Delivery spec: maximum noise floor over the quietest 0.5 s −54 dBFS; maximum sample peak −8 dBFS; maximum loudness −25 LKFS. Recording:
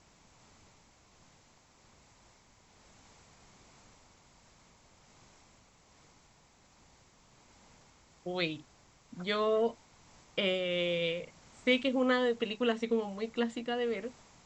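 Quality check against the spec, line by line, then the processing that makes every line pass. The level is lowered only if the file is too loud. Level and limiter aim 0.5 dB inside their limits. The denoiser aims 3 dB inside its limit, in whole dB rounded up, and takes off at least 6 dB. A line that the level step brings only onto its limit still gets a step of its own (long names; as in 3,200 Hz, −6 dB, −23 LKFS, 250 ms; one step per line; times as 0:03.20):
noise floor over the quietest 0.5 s −64 dBFS: in spec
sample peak −15.0 dBFS: in spec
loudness −32.5 LKFS: in spec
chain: no processing needed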